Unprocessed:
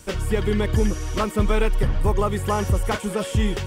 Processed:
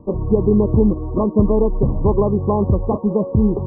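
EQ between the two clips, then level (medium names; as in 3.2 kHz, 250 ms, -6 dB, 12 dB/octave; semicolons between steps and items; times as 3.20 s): brick-wall FIR low-pass 1.2 kHz; peaking EQ 250 Hz +11.5 dB 2.7 oct; -1.5 dB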